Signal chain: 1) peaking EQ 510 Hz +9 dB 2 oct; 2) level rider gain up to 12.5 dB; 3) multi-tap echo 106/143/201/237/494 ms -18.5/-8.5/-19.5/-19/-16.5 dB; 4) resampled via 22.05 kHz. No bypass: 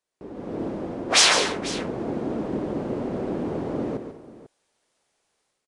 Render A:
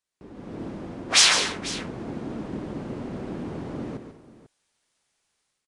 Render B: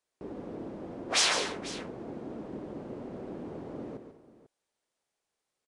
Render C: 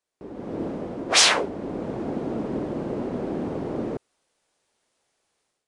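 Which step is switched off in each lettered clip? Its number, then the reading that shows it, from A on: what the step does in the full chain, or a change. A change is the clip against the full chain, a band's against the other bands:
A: 1, 500 Hz band -7.0 dB; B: 2, loudness change -9.5 LU; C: 3, momentary loudness spread change -1 LU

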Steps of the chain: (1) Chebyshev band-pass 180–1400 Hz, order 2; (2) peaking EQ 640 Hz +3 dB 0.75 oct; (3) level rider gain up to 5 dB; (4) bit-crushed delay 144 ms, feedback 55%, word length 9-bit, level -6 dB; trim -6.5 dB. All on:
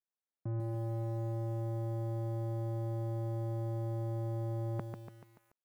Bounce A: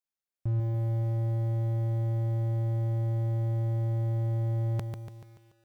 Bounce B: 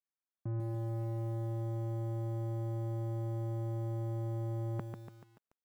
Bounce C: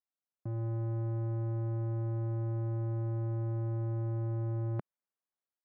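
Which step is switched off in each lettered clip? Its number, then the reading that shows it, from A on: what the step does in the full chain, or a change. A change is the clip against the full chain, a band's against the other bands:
1, 125 Hz band +7.5 dB; 2, 125 Hz band +1.5 dB; 4, 125 Hz band +4.5 dB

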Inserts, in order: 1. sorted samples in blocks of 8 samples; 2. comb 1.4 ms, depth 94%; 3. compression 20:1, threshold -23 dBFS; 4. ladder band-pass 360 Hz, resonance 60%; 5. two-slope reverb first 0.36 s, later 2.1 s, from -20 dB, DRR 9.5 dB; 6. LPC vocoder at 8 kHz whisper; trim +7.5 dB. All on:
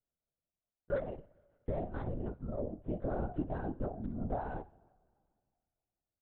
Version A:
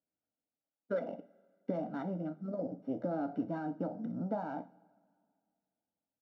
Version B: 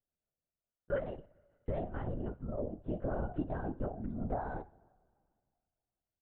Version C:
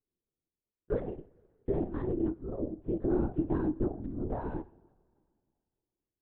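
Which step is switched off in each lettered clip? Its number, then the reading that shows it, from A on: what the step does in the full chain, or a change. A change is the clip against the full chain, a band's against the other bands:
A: 6, 125 Hz band -4.5 dB; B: 1, 2 kHz band +2.0 dB; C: 2, 250 Hz band +7.0 dB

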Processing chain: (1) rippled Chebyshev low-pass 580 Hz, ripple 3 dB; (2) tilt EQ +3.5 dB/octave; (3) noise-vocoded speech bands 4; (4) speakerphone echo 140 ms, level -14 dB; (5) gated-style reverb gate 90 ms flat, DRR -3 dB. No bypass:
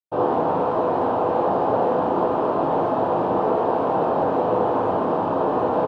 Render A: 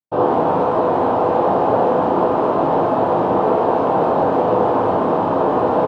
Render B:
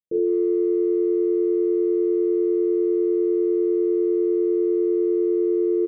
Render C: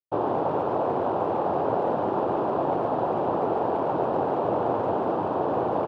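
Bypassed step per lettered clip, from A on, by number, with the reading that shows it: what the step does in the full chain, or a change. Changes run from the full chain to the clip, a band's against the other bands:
2, loudness change +4.5 LU; 3, crest factor change -6.0 dB; 5, loudness change -4.5 LU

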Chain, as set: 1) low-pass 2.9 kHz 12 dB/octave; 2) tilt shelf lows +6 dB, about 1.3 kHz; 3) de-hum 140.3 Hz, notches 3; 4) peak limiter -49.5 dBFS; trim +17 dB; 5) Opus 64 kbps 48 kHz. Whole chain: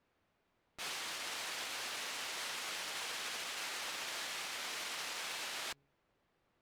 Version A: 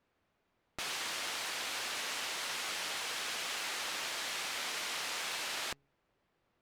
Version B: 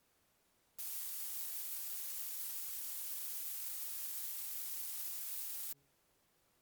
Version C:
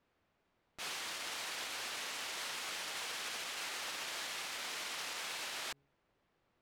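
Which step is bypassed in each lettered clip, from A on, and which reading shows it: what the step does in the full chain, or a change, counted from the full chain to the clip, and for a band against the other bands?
4, mean gain reduction 3.5 dB; 1, 8 kHz band +18.0 dB; 5, crest factor change -2.0 dB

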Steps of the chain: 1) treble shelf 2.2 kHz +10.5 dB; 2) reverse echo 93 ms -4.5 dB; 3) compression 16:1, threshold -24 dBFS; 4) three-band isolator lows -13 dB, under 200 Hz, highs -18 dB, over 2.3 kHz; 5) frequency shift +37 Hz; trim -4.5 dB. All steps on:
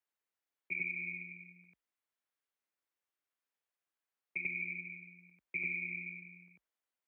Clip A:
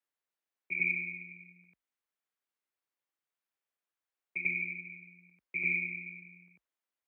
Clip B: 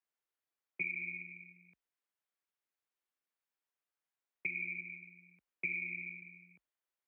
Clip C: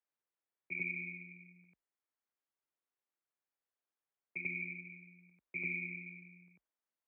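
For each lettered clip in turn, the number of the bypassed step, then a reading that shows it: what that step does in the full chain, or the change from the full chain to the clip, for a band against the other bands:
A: 3, mean gain reduction 2.0 dB; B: 2, crest factor change +2.5 dB; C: 1, 2 kHz band -4.5 dB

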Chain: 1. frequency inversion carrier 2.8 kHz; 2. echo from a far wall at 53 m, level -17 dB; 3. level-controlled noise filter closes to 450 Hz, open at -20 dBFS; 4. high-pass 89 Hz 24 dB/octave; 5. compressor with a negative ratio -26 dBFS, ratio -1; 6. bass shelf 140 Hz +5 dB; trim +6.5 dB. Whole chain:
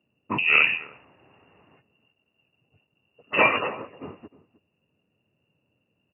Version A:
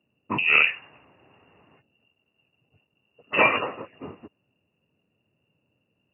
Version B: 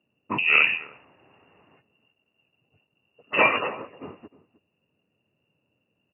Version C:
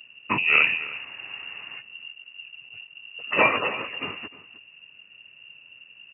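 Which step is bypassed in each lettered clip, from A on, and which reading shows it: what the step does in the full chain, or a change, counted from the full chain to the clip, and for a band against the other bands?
2, momentary loudness spread change +2 LU; 6, 125 Hz band -2.5 dB; 3, momentary loudness spread change +6 LU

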